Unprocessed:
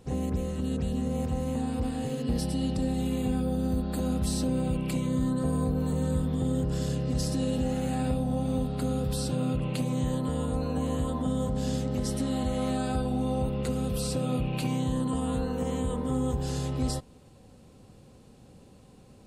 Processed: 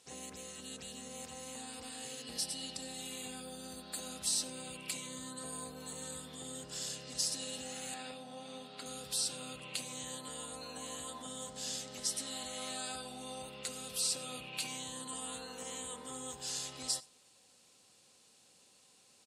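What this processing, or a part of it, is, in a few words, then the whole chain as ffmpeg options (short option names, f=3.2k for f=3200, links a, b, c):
piezo pickup straight into a mixer: -filter_complex "[0:a]asettb=1/sr,asplit=3[a][b][c];[a]atrim=end=7.944[d];[b]atrim=start=7.94:end=8.86,asetpts=PTS-STARTPTS,afade=t=in:d=0.004:c=qsin,afade=t=out:st=0.916:d=0.004:c=qsin,acrossover=split=160 5100:gain=0.224 1 0.224[e][f][g];[e][f][g]amix=inputs=3:normalize=0[h];[c]atrim=start=8.856[i];[d][h]acrossfade=d=0.004:c1=hsin:c2=qsin[j];[j][i]acrossfade=d=0.004:c1=qsin:c2=hsin,lowpass=7.6k,aderivative,aecho=1:1:94:0.0708,volume=7.5dB"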